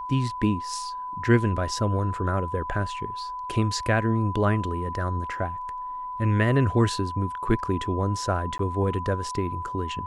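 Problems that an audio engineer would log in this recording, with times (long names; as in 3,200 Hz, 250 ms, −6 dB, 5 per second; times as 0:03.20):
whistle 1,000 Hz −31 dBFS
0:08.58–0:08.59: drop-out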